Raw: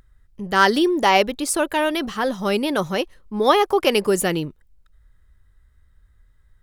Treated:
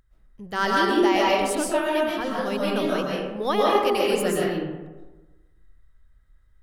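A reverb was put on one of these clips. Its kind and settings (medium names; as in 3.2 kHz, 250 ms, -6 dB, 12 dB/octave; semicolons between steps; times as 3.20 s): algorithmic reverb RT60 1.2 s, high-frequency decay 0.45×, pre-delay 95 ms, DRR -5 dB; trim -9.5 dB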